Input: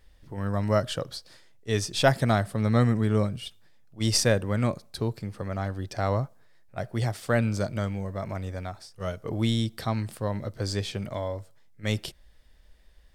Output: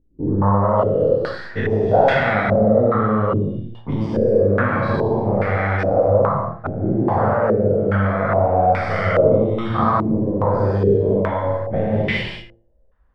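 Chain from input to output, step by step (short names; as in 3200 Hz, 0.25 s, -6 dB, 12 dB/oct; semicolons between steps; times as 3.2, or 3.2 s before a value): spectral dilation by 0.24 s; gate with hold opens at -36 dBFS; de-hum 114.5 Hz, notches 31; compressor 6:1, threshold -28 dBFS, peak gain reduction 16.5 dB; on a send: flutter echo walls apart 10.4 m, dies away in 0.31 s; on the sum: non-linear reverb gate 0.23 s flat, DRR -2 dB; stepped low-pass 2.4 Hz 330–2100 Hz; gain +6.5 dB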